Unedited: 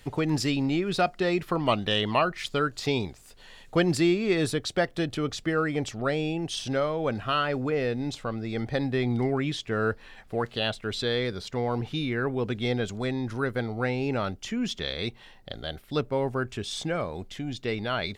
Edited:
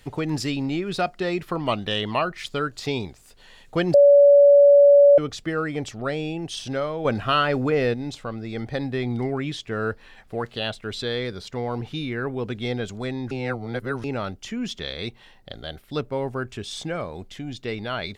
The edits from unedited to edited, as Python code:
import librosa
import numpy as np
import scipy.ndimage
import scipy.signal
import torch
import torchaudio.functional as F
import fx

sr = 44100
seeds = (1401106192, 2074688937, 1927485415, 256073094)

y = fx.edit(x, sr, fx.bleep(start_s=3.94, length_s=1.24, hz=570.0, db=-9.0),
    fx.clip_gain(start_s=7.05, length_s=0.89, db=5.5),
    fx.reverse_span(start_s=13.31, length_s=0.73), tone=tone)